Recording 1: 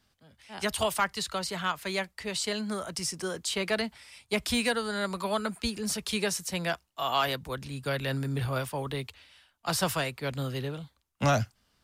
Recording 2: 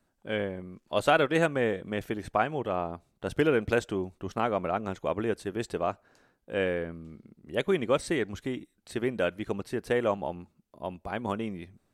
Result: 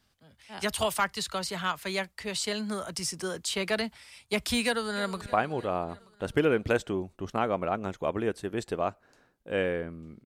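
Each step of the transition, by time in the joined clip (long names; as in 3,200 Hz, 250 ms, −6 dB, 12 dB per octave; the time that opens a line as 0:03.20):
recording 1
0:04.64–0:05.21: delay throw 310 ms, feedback 60%, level −16.5 dB
0:05.21: continue with recording 2 from 0:02.23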